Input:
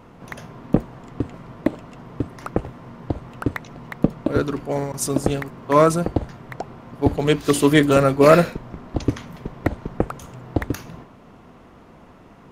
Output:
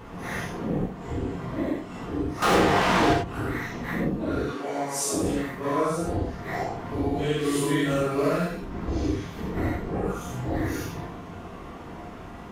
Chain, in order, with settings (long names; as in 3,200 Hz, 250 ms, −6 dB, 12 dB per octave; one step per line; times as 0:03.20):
random phases in long frames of 200 ms
0:04.46–0:05.14: meter weighting curve A
downward compressor 3 to 1, threshold −35 dBFS, peak gain reduction 20.5 dB
0:02.42–0:03.13: mid-hump overdrive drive 37 dB, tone 6,000 Hz, clips at −21 dBFS
reverb whose tail is shaped and stops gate 120 ms flat, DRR −1 dB
level +4 dB